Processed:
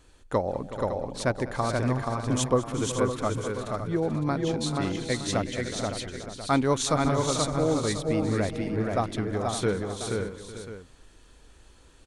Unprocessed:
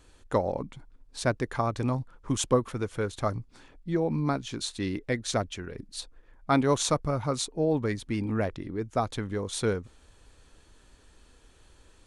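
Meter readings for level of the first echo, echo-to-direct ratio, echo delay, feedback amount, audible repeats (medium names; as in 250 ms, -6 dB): -18.0 dB, -1.0 dB, 199 ms, no regular repeats, 9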